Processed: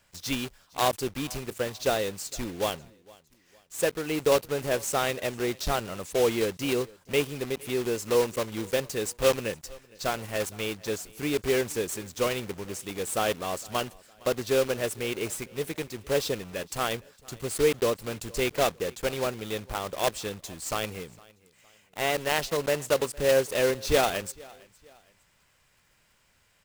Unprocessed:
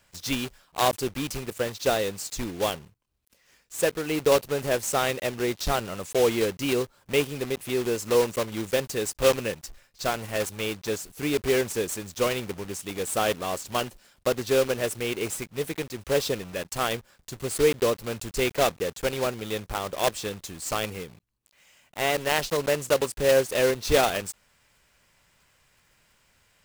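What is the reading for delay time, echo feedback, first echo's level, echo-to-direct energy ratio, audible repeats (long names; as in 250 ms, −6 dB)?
460 ms, 38%, −24.0 dB, −23.5 dB, 2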